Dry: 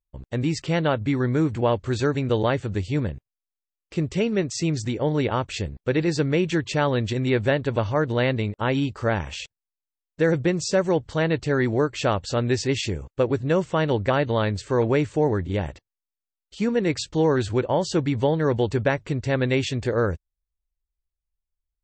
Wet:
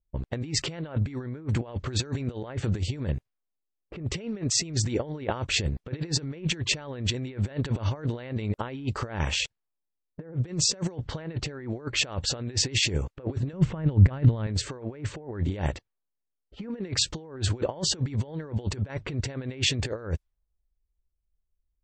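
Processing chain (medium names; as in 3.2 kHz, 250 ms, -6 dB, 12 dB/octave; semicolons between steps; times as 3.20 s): compressor with a negative ratio -29 dBFS, ratio -0.5; level-controlled noise filter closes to 490 Hz, open at -25 dBFS; 13.53–14.47 s: tone controls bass +13 dB, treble -8 dB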